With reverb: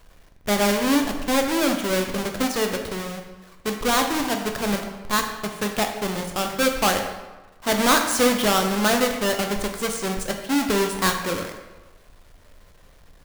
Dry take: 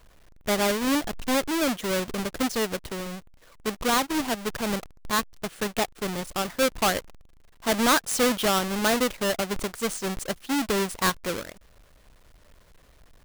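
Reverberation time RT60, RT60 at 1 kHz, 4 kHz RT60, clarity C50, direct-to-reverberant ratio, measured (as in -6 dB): 1.2 s, 1.2 s, 0.85 s, 6.5 dB, 3.5 dB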